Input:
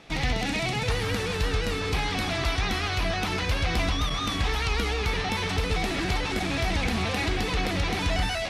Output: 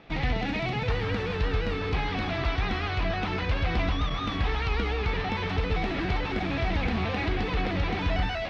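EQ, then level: distance through air 250 m; 0.0 dB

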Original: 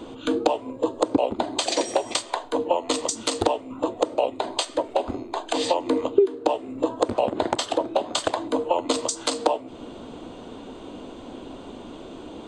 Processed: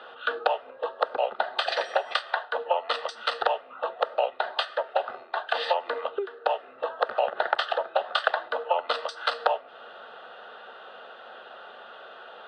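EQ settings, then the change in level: band-pass 580–3700 Hz; high-order bell 1.5 kHz +11 dB; static phaser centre 1.5 kHz, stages 8; 0.0 dB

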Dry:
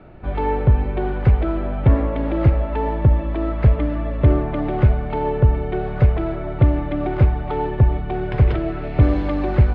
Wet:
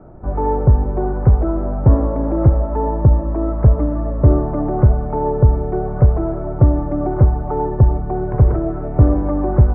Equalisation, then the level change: low-pass 1.2 kHz 24 dB/octave; +3.0 dB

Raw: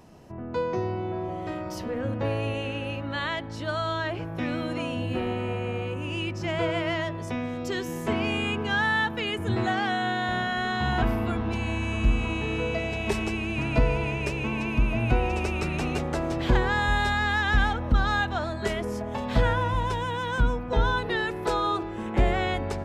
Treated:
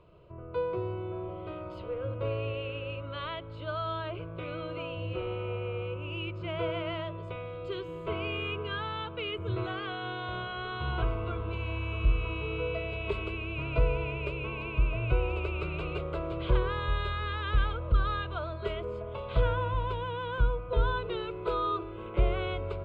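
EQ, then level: distance through air 190 m; static phaser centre 1.2 kHz, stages 8; -2.0 dB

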